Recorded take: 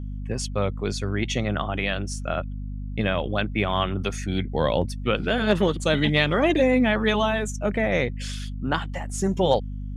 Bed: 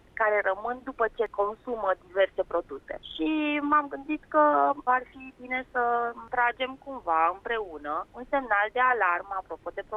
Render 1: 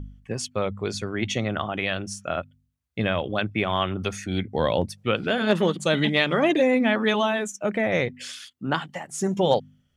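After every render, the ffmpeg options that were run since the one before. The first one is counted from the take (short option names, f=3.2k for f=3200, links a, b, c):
-af "bandreject=f=50:t=h:w=4,bandreject=f=100:t=h:w=4,bandreject=f=150:t=h:w=4,bandreject=f=200:t=h:w=4,bandreject=f=250:t=h:w=4"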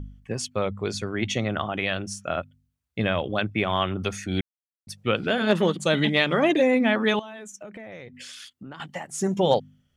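-filter_complex "[0:a]asettb=1/sr,asplit=3[a][b][c];[a]atrim=end=7.194[d];[b]atrim=start=7.19:end=8.8,asetpts=PTS-STARTPTS,afade=t=in:d=0.004:c=qsin,afade=t=out:st=1.606:d=0.004:c=qsin,acompressor=threshold=-37dB:ratio=8:attack=3.2:release=140:knee=1:detection=peak[e];[c]atrim=start=8.796[f];[d][e]acrossfade=d=0.004:c1=hsin:c2=qsin[g];[g][f]acrossfade=d=0.004:c1=qsin:c2=hsin,asplit=3[h][i][j];[h]atrim=end=4.41,asetpts=PTS-STARTPTS,afade=t=out:st=4.406:d=0.004:c=hsin[k];[i]atrim=start=4.41:end=4.87,asetpts=PTS-STARTPTS,volume=0[l];[j]atrim=start=4.87,asetpts=PTS-STARTPTS,afade=t=in:d=0.004:c=hsin[m];[k][l][m]concat=n=3:v=0:a=1"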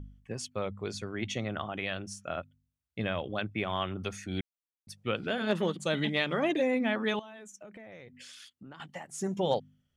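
-af "volume=-8dB"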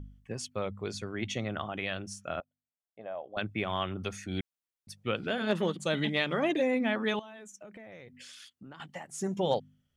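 -filter_complex "[0:a]asettb=1/sr,asplit=3[a][b][c];[a]atrim=end=2.404[d];[b]atrim=start=2.4:end=3.37,asetpts=PTS-STARTPTS,afade=t=in:d=0.004:c=qsin,afade=t=out:st=0.966:d=0.004:c=qsin,bandpass=f=690:t=q:w=3.3[e];[c]atrim=start=3.366[f];[d][e]acrossfade=d=0.004:c1=hsin:c2=qsin[g];[g][f]acrossfade=d=0.004:c1=qsin:c2=hsin"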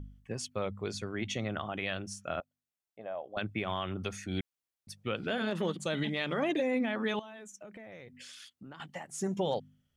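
-af "alimiter=limit=-22dB:level=0:latency=1:release=63"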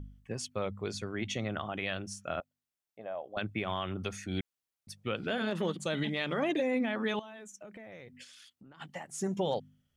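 -filter_complex "[0:a]asplit=3[a][b][c];[a]afade=t=out:st=8.23:d=0.02[d];[b]acompressor=threshold=-51dB:ratio=6:attack=3.2:release=140:knee=1:detection=peak,afade=t=in:st=8.23:d=0.02,afade=t=out:st=8.8:d=0.02[e];[c]afade=t=in:st=8.8:d=0.02[f];[d][e][f]amix=inputs=3:normalize=0"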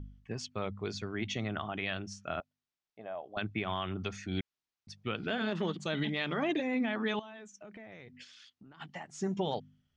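-af "lowpass=f=6.1k:w=0.5412,lowpass=f=6.1k:w=1.3066,equalizer=f=530:t=o:w=0.22:g=-8.5"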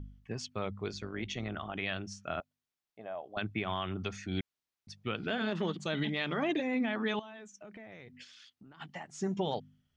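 -filter_complex "[0:a]asettb=1/sr,asplit=3[a][b][c];[a]atrim=end=0.884[d];[b]atrim=start=0.88:end=1.76,asetpts=PTS-STARTPTS,afade=t=in:d=0.004:c=qsin,afade=t=out:st=0.876:d=0.004:c=qsin,tremolo=f=150:d=0.519[e];[c]atrim=start=1.756[f];[d][e]acrossfade=d=0.004:c1=hsin:c2=qsin[g];[g][f]acrossfade=d=0.004:c1=qsin:c2=hsin"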